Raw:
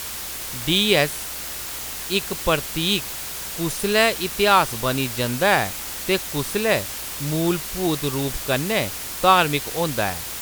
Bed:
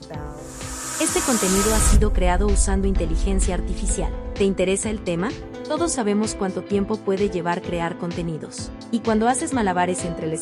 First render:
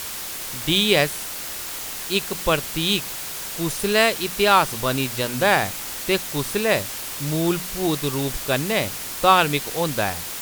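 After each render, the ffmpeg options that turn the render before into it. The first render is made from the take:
-af "bandreject=f=60:t=h:w=4,bandreject=f=120:t=h:w=4,bandreject=f=180:t=h:w=4,bandreject=f=240:t=h:w=4"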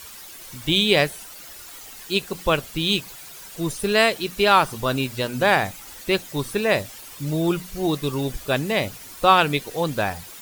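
-af "afftdn=nr=12:nf=-32"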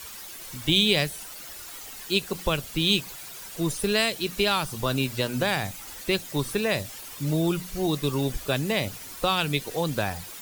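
-filter_complex "[0:a]acrossover=split=200|3000[a][b][c];[b]acompressor=threshold=-24dB:ratio=6[d];[a][d][c]amix=inputs=3:normalize=0"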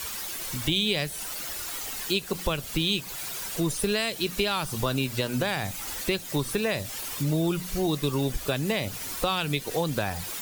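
-filter_complex "[0:a]asplit=2[a][b];[b]alimiter=limit=-15dB:level=0:latency=1:release=168,volume=0.5dB[c];[a][c]amix=inputs=2:normalize=0,acompressor=threshold=-28dB:ratio=2"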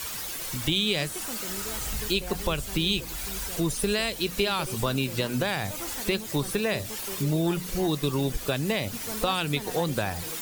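-filter_complex "[1:a]volume=-19dB[a];[0:a][a]amix=inputs=2:normalize=0"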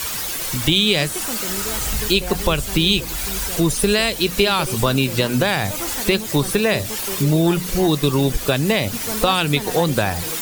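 -af "volume=9dB"

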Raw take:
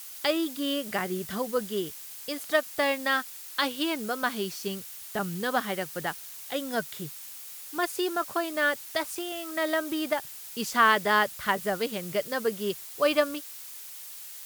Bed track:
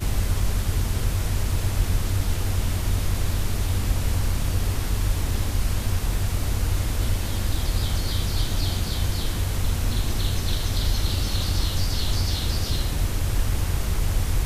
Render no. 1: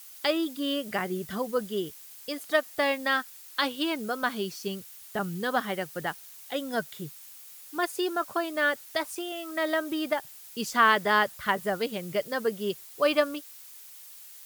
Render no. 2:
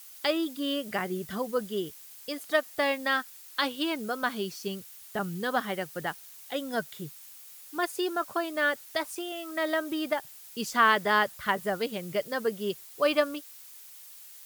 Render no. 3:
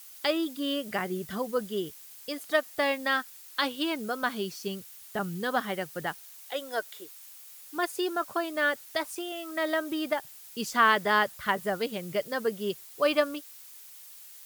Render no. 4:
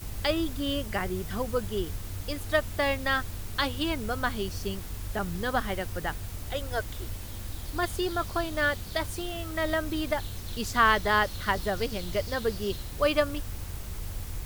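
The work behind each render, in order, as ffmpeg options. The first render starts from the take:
-af "afftdn=nr=6:nf=-43"
-af "volume=-1dB"
-filter_complex "[0:a]asettb=1/sr,asplit=3[a][b][c];[a]atrim=end=6.224[d];[b]atrim=start=6.22:end=7.58,asetpts=PTS-STARTPTS,afade=t=in:d=0.004:c=qsin,afade=t=out:st=1.356:d=0.004:c=qsin,highpass=f=360:w=0.5412,highpass=f=360:w=1.3066[e];[c]atrim=start=7.576[f];[d][e]acrossfade=d=0.004:c1=hsin:c2=qsin[g];[g][f]acrossfade=d=0.004:c1=qsin:c2=hsin"
-filter_complex "[1:a]volume=-13.5dB[a];[0:a][a]amix=inputs=2:normalize=0"

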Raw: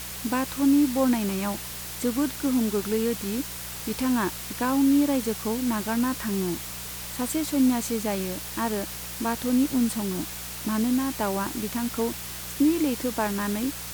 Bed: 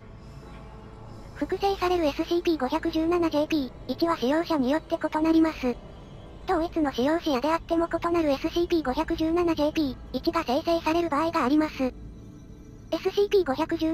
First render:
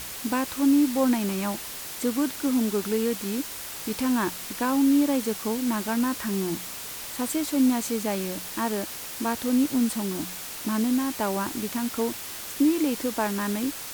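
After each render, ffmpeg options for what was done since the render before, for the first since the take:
-af "bandreject=f=60:t=h:w=4,bandreject=f=120:t=h:w=4,bandreject=f=180:t=h:w=4"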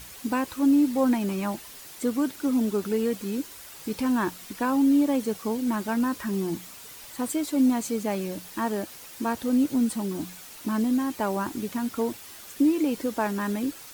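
-af "afftdn=nr=9:nf=-37"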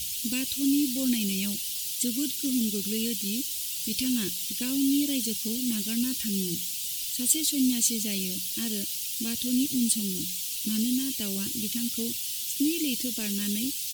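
-af "firequalizer=gain_entry='entry(160,0);entry(880,-29);entry(2900,12)':delay=0.05:min_phase=1"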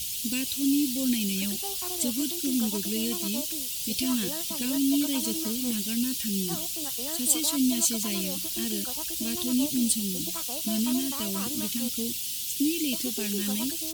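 -filter_complex "[1:a]volume=-16dB[a];[0:a][a]amix=inputs=2:normalize=0"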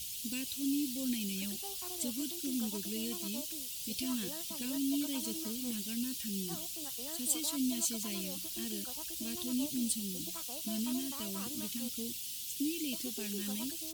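-af "volume=-9dB"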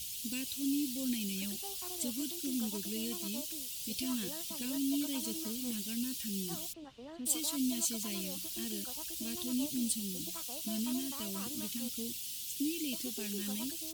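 -filter_complex "[0:a]asplit=3[a][b][c];[a]afade=t=out:st=6.72:d=0.02[d];[b]lowpass=1.6k,afade=t=in:st=6.72:d=0.02,afade=t=out:st=7.25:d=0.02[e];[c]afade=t=in:st=7.25:d=0.02[f];[d][e][f]amix=inputs=3:normalize=0"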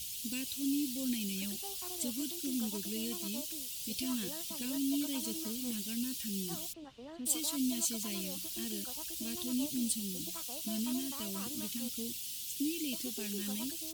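-af anull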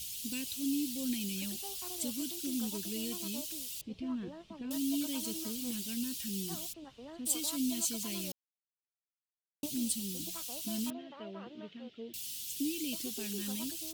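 -filter_complex "[0:a]asettb=1/sr,asplit=3[a][b][c];[a]atrim=end=3.814[d];[b]atrim=start=3.81:end=4.71,asetpts=PTS-STARTPTS,afade=t=in:d=0.004:c=qsin,afade=t=out:st=0.896:d=0.004:c=qsin,lowpass=1.4k[e];[c]atrim=start=4.706[f];[d][e]acrossfade=d=0.004:c1=hsin:c2=qsin[g];[g][f]acrossfade=d=0.004:c1=qsin:c2=hsin,asettb=1/sr,asplit=3[h][i][j];[h]atrim=end=10.904[k];[i]atrim=start=10.9:end=12.14,asetpts=PTS-STARTPTS,afade=t=in:d=0.004:c=qsin,afade=t=out:st=1.236:d=0.004:c=qsin,highpass=220,equalizer=f=270:t=q:w=4:g=-9,equalizer=f=430:t=q:w=4:g=4,equalizer=f=640:t=q:w=4:g=5,equalizer=f=1.1k:t=q:w=4:g=-5,equalizer=f=2.4k:t=q:w=4:g=-6,lowpass=f=2.5k:w=0.5412,lowpass=f=2.5k:w=1.3066[l];[j]atrim=start=12.136[m];[k][l]acrossfade=d=0.004:c1=hsin:c2=qsin[n];[n][m]acrossfade=d=0.004:c1=qsin:c2=hsin,asplit=3[o][p][q];[o]atrim=end=8.32,asetpts=PTS-STARTPTS,afade=t=out:st=8.316:d=0.004:c=hsin[r];[p]atrim=start=8.32:end=9.63,asetpts=PTS-STARTPTS,volume=0[s];[q]atrim=start=9.63,asetpts=PTS-STARTPTS,afade=t=in:d=0.004:c=hsin[t];[r][s][t]concat=n=3:v=0:a=1"

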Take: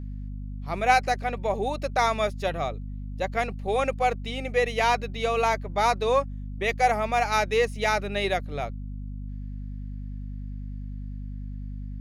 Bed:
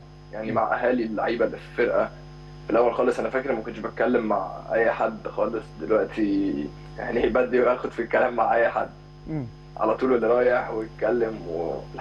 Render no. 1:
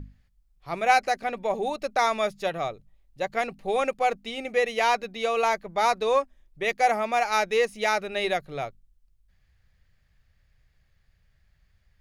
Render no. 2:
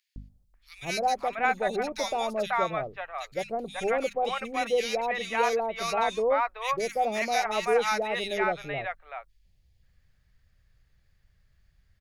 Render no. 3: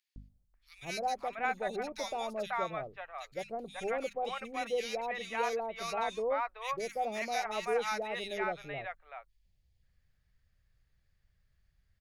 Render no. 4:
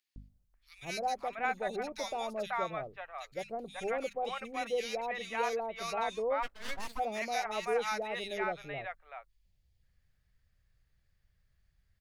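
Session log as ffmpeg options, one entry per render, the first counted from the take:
-af "bandreject=f=50:t=h:w=6,bandreject=f=100:t=h:w=6,bandreject=f=150:t=h:w=6,bandreject=f=200:t=h:w=6,bandreject=f=250:t=h:w=6"
-filter_complex "[0:a]acrossover=split=780|2400[a][b][c];[a]adelay=160[d];[b]adelay=540[e];[d][e][c]amix=inputs=3:normalize=0"
-af "volume=-7.5dB"
-filter_complex "[0:a]asplit=3[a][b][c];[a]afade=t=out:st=6.42:d=0.02[d];[b]aeval=exprs='abs(val(0))':c=same,afade=t=in:st=6.42:d=0.02,afade=t=out:st=6.98:d=0.02[e];[c]afade=t=in:st=6.98:d=0.02[f];[d][e][f]amix=inputs=3:normalize=0"

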